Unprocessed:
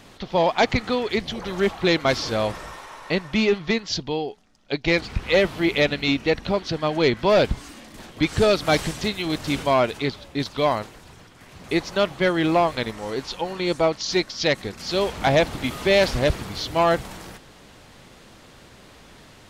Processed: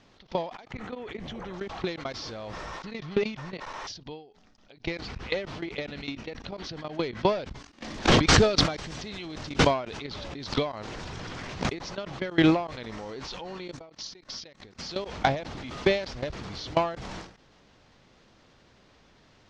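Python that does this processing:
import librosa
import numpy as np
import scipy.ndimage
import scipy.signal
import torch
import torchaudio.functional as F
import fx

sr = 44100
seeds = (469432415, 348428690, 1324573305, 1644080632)

y = fx.peak_eq(x, sr, hz=4700.0, db=-13.0, octaves=0.82, at=(0.71, 1.54))
y = fx.pre_swell(y, sr, db_per_s=27.0, at=(7.82, 11.82))
y = fx.edit(y, sr, fx.reverse_span(start_s=2.83, length_s=1.04), tone=tone)
y = scipy.signal.sosfilt(scipy.signal.cheby1(3, 1.0, 5900.0, 'lowpass', fs=sr, output='sos'), y)
y = fx.level_steps(y, sr, step_db=21)
y = fx.end_taper(y, sr, db_per_s=110.0)
y = y * librosa.db_to_amplitude(4.0)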